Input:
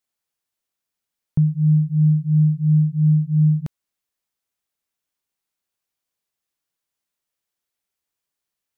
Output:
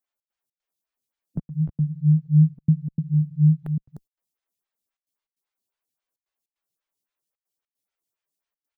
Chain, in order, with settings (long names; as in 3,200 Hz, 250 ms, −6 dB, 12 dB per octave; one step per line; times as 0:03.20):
spectral magnitudes quantised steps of 15 dB
single-tap delay 302 ms −8 dB
gate pattern "xx.xx.xxxxxx" 151 BPM −60 dB
0:02.18–0:03.14: dynamic equaliser 340 Hz, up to +3 dB, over −33 dBFS, Q 1.2
phaser with staggered stages 3.7 Hz